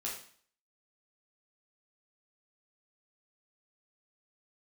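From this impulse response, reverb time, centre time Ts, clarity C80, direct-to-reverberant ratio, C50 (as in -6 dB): 0.50 s, 36 ms, 8.5 dB, -5.0 dB, 4.5 dB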